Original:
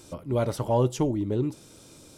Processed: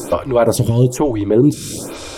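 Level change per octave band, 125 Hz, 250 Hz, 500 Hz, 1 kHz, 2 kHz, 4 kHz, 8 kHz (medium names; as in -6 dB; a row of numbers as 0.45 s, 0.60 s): +11.5 dB, +12.5 dB, +12.0 dB, +9.0 dB, +14.0 dB, +13.5 dB, +16.5 dB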